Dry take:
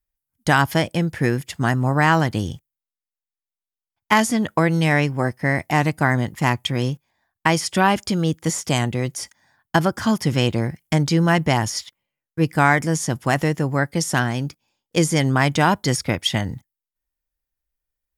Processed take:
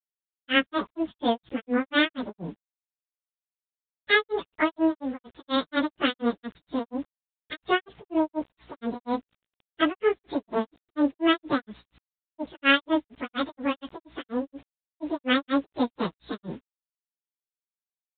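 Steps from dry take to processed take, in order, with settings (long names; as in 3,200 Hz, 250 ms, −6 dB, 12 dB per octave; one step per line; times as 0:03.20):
phase-vocoder pitch shift without resampling +11.5 semitones
mains hum 60 Hz, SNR 32 dB
bit reduction 8 bits
granular cloud 191 ms, grains 4.2 per second, pitch spread up and down by 0 semitones
mu-law 64 kbit/s 8,000 Hz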